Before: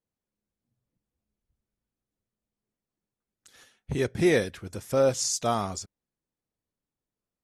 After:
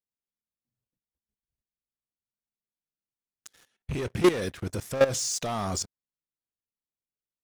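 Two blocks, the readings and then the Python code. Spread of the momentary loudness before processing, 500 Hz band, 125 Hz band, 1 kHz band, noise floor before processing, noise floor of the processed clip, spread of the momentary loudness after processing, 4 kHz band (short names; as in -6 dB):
15 LU, -1.0 dB, -0.5 dB, -1.5 dB, under -85 dBFS, under -85 dBFS, 11 LU, +0.5 dB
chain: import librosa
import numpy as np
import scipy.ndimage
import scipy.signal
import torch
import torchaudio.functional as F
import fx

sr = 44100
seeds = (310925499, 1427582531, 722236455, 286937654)

y = fx.rattle_buzz(x, sr, strikes_db=-29.0, level_db=-30.0)
y = fx.leveller(y, sr, passes=3)
y = fx.level_steps(y, sr, step_db=15)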